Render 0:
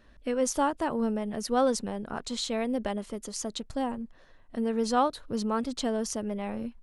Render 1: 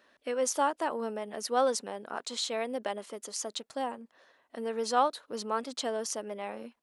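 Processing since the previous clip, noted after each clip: HPF 430 Hz 12 dB/oct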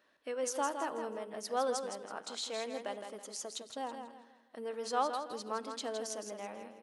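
on a send: feedback echo 0.163 s, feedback 32%, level -7 dB; on the sum: shoebox room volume 4000 m³, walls furnished, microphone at 0.56 m; gain -6.5 dB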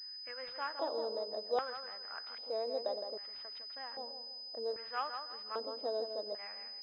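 LFO band-pass square 0.63 Hz 550–1900 Hz; pulse-width modulation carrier 5000 Hz; gain +5.5 dB

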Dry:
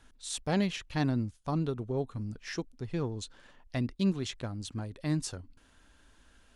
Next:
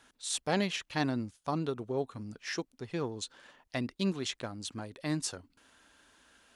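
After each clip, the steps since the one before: HPF 380 Hz 6 dB/oct; gain +3 dB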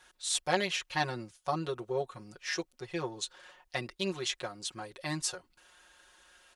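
bell 210 Hz -14 dB 0.97 oct; comb 5.5 ms, depth 99%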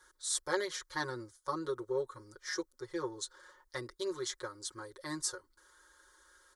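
fixed phaser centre 710 Hz, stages 6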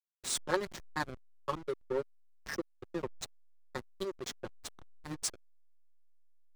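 reverb removal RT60 0.71 s; backlash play -30.5 dBFS; gain +3.5 dB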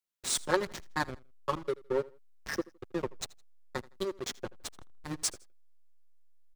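feedback echo 81 ms, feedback 30%, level -22 dB; gain +3.5 dB

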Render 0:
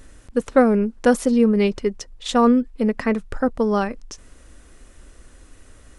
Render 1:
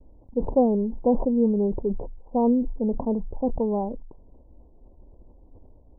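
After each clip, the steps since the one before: expander -43 dBFS; steep low-pass 970 Hz 96 dB/oct; sustainer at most 59 dB/s; gain -5 dB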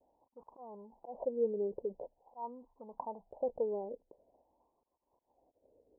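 dynamic EQ 310 Hz, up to -8 dB, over -34 dBFS, Q 0.81; auto swell 0.204 s; wah 0.46 Hz 450–1100 Hz, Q 4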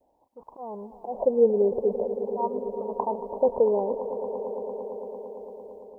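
AGC gain up to 8 dB; swelling echo 0.113 s, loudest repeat 5, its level -15.5 dB; gain +5 dB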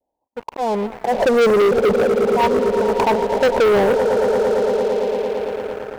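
sample leveller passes 5; gain -1 dB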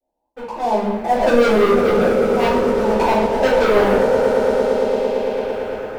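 reverb RT60 0.80 s, pre-delay 3 ms, DRR -11.5 dB; gain -10 dB

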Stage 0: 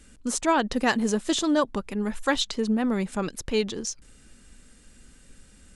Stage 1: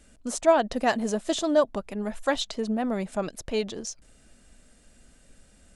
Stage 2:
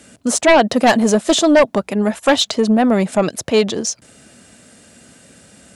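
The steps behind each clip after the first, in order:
bell 650 Hz +12 dB 0.43 oct; gain -4 dB
HPF 95 Hz 24 dB/oct; sine folder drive 9 dB, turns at -7.5 dBFS; gain +1.5 dB

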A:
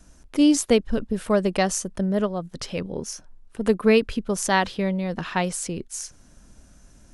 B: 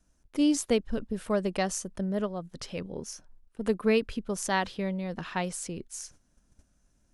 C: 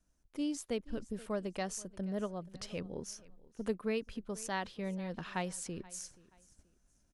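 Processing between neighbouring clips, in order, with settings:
gate -45 dBFS, range -10 dB; gain -7 dB
feedback echo 0.479 s, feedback 31%, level -22.5 dB; vocal rider within 4 dB 0.5 s; gain -8.5 dB

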